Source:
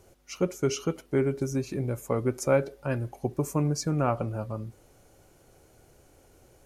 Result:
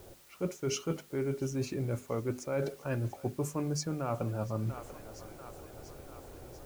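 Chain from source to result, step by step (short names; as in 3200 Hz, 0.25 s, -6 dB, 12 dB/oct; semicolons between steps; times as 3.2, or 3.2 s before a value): in parallel at +0.5 dB: vocal rider 0.5 s; on the sum: low-pass opened by the level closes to 1100 Hz, open at -17.5 dBFS; notches 50/100/150/200/250 Hz; thinning echo 0.691 s, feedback 65%, high-pass 500 Hz, level -22.5 dB; reverse; compressor 12:1, threshold -30 dBFS, peak gain reduction 17.5 dB; reverse; requantised 10-bit, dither triangular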